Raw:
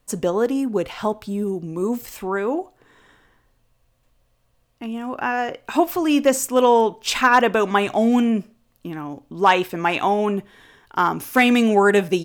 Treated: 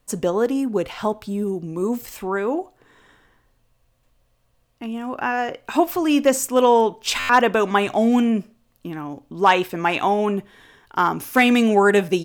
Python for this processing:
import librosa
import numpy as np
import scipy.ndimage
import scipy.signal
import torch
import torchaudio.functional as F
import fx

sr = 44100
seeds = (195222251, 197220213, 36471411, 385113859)

y = fx.buffer_glitch(x, sr, at_s=(7.19,), block=512, repeats=8)